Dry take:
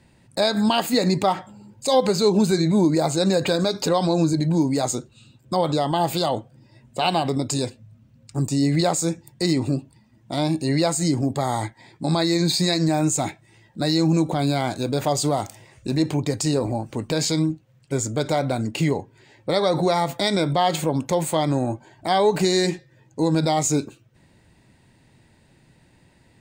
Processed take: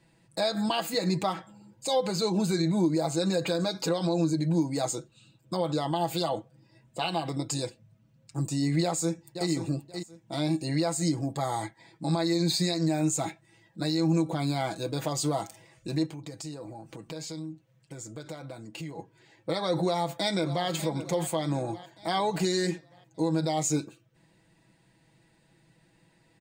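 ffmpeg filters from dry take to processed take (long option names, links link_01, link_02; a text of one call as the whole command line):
ffmpeg -i in.wav -filter_complex "[0:a]asplit=2[link_01][link_02];[link_02]afade=type=in:start_time=8.82:duration=0.01,afade=type=out:start_time=9.49:duration=0.01,aecho=0:1:530|1060|1590:0.354813|0.0709627|0.0141925[link_03];[link_01][link_03]amix=inputs=2:normalize=0,asplit=3[link_04][link_05][link_06];[link_04]afade=type=out:start_time=16.05:duration=0.02[link_07];[link_05]acompressor=threshold=-33dB:ratio=3:attack=3.2:release=140:knee=1:detection=peak,afade=type=in:start_time=16.05:duration=0.02,afade=type=out:start_time=18.97:duration=0.02[link_08];[link_06]afade=type=in:start_time=18.97:duration=0.02[link_09];[link_07][link_08][link_09]amix=inputs=3:normalize=0,asplit=2[link_10][link_11];[link_11]afade=type=in:start_time=19.83:duration=0.01,afade=type=out:start_time=20.67:duration=0.01,aecho=0:1:590|1180|1770|2360|2950:0.223872|0.111936|0.055968|0.027984|0.013992[link_12];[link_10][link_12]amix=inputs=2:normalize=0,lowshelf=frequency=130:gain=-5.5,aecho=1:1:6.1:0.69,alimiter=limit=-9dB:level=0:latency=1:release=160,volume=-7.5dB" out.wav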